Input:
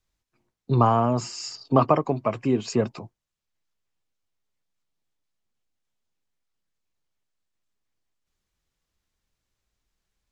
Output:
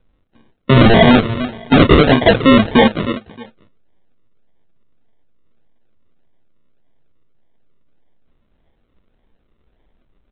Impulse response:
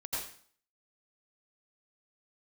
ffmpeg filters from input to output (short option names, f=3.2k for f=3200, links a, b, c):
-filter_complex "[0:a]aecho=1:1:4.2:0.48,flanger=delay=8.1:depth=5.3:regen=60:speed=1.2:shape=sinusoidal,asplit=2[a][b];[b]adelay=310,lowpass=f=1.4k:p=1,volume=-19dB,asplit=2[c][d];[d]adelay=310,lowpass=f=1.4k:p=1,volume=0.22[e];[a][c][e]amix=inputs=3:normalize=0,apsyclip=26dB,aresample=8000,acrusher=samples=8:mix=1:aa=0.000001:lfo=1:lforange=4.8:lforate=1.7,aresample=44100,volume=-3.5dB"